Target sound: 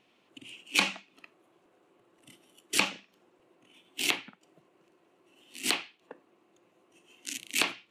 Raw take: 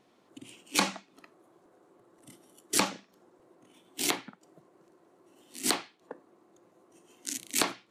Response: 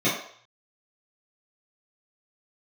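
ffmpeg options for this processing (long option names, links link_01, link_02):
-af "equalizer=frequency=2700:width=1.8:gain=13.5,volume=-4.5dB"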